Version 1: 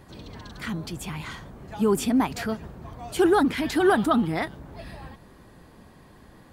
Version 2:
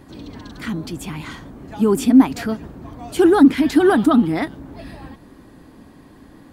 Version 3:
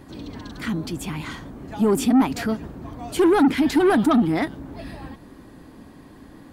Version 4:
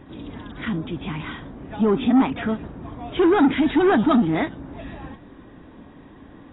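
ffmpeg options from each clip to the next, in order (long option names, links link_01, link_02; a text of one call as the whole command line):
ffmpeg -i in.wav -af "equalizer=frequency=280:width=2.8:gain=11,volume=2.5dB" out.wav
ffmpeg -i in.wav -af "asoftclip=type=tanh:threshold=-12dB" out.wav
ffmpeg -i in.wav -ar 16000 -c:a aac -b:a 16k out.aac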